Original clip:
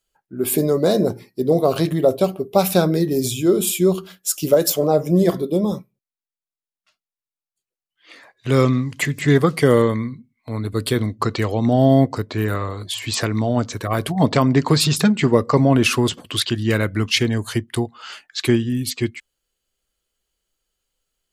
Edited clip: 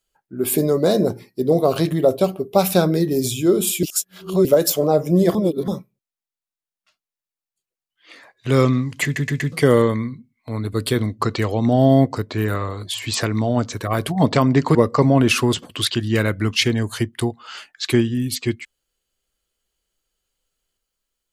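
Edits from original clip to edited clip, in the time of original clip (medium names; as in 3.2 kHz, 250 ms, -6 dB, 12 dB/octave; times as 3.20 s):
3.83–4.45 s: reverse
5.35–5.68 s: reverse
9.04 s: stutter in place 0.12 s, 4 plays
14.75–15.30 s: delete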